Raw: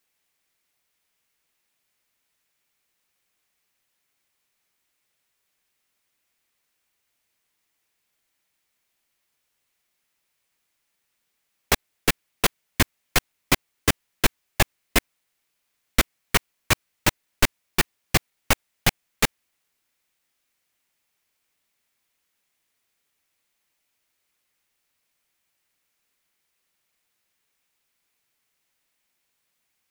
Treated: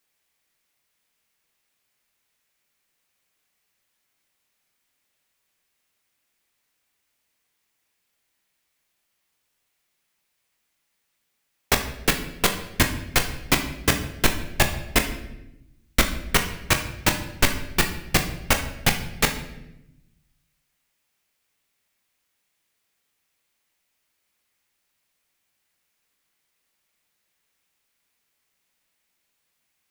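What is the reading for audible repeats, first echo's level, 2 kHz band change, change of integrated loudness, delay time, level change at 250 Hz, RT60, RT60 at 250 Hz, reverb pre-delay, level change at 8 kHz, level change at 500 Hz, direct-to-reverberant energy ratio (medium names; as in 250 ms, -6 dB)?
no echo, no echo, +1.5 dB, +1.0 dB, no echo, +2.0 dB, 0.90 s, 1.4 s, 23 ms, +1.0 dB, +1.5 dB, 5.0 dB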